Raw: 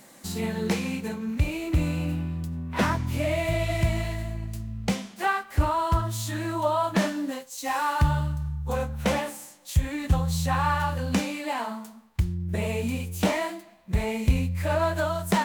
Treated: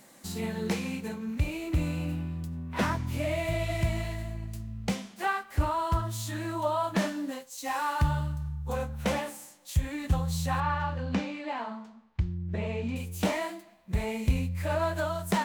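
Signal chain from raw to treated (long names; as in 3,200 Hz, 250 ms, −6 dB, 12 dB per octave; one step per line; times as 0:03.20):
0:10.60–0:12.96: high-frequency loss of the air 160 metres
level −4 dB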